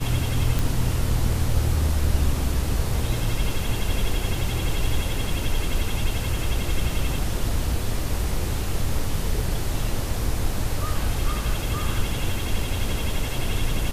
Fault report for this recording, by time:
0:00.59: click

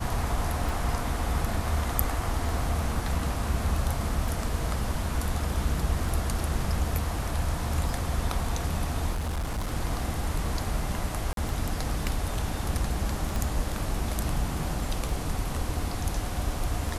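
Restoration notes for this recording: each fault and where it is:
scratch tick 33 1/3 rpm
0:09.12–0:09.68: clipping −26.5 dBFS
0:11.33–0:11.37: drop-out 42 ms
0:13.36: click

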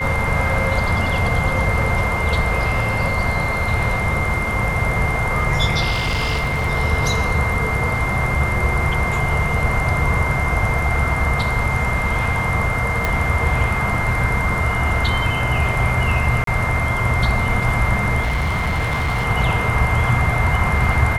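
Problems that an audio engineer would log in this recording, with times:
whistle 2,100 Hz −23 dBFS
0:05.91–0:06.68: clipping −16 dBFS
0:13.05: click −6 dBFS
0:16.44–0:16.47: drop-out 33 ms
0:18.21–0:19.26: clipping −16.5 dBFS

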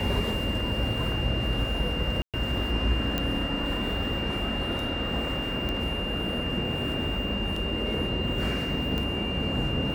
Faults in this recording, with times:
whistle 2,800 Hz −32 dBFS
0:02.22–0:02.34: drop-out 117 ms
0:03.18: click −13 dBFS
0:05.69: click −19 dBFS
0:07.56: drop-out 4.2 ms
0:08.98: click −18 dBFS

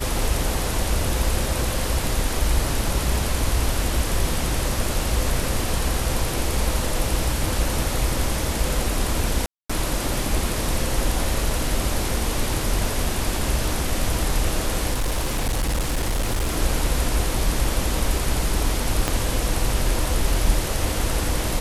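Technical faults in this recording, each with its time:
0:09.46–0:09.70: drop-out 235 ms
0:14.93–0:16.57: clipping −18.5 dBFS
0:19.08: click −6 dBFS

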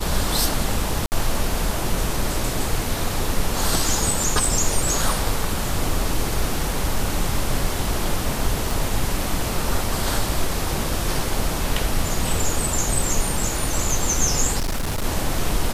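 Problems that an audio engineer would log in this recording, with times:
0:01.06–0:01.12: drop-out 59 ms
0:08.71: click
0:14.59–0:15.05: clipping −20 dBFS

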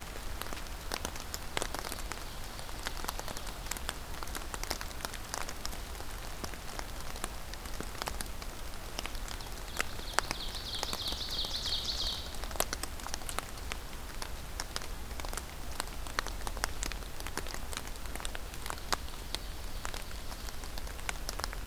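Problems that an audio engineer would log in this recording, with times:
surface crackle 520 per second −46 dBFS

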